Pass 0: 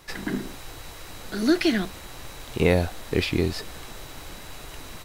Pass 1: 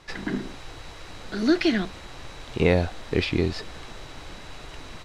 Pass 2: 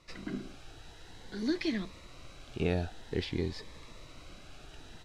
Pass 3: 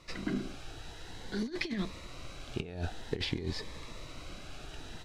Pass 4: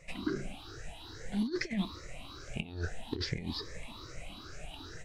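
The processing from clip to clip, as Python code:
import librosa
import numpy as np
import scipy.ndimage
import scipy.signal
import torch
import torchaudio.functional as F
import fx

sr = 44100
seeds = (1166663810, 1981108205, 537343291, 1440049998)

y1 = scipy.signal.sosfilt(scipy.signal.butter(2, 5600.0, 'lowpass', fs=sr, output='sos'), x)
y2 = fx.notch_cascade(y1, sr, direction='rising', hz=0.5)
y2 = y2 * librosa.db_to_amplitude(-9.0)
y3 = fx.over_compress(y2, sr, threshold_db=-35.0, ratio=-0.5)
y3 = y3 * librosa.db_to_amplitude(2.0)
y4 = fx.spec_ripple(y3, sr, per_octave=0.53, drift_hz=2.4, depth_db=19)
y4 = y4 * librosa.db_to_amplitude(-4.0)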